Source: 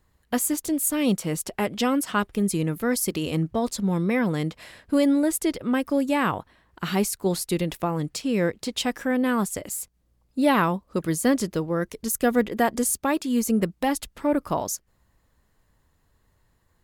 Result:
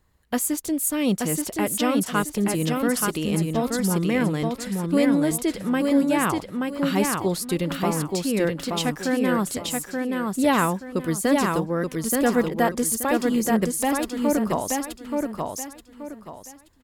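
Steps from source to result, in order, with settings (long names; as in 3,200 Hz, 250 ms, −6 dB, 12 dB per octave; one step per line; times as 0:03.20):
repeating echo 878 ms, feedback 30%, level −3.5 dB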